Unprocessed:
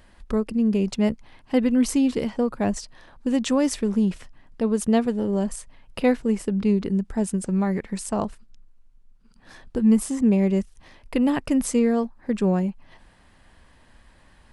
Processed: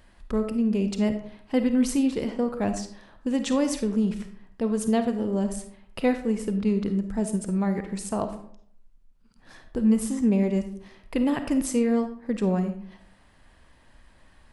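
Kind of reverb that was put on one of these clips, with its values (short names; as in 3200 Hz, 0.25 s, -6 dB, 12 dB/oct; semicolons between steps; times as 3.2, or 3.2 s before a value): digital reverb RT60 0.64 s, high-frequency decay 0.55×, pre-delay 10 ms, DRR 7.5 dB; gain -3 dB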